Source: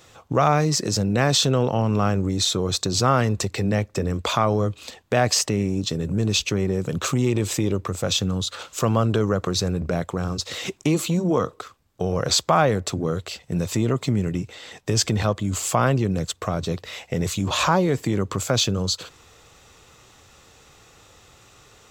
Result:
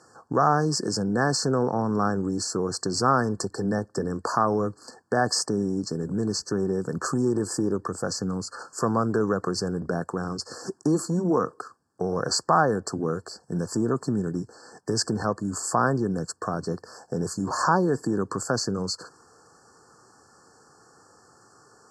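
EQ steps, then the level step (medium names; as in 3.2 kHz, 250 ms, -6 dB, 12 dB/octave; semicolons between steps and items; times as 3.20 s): brick-wall FIR band-stop 1.8–4.2 kHz; cabinet simulation 190–9300 Hz, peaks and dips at 590 Hz -7 dB, 4.2 kHz -6 dB, 6.3 kHz -8 dB; 0.0 dB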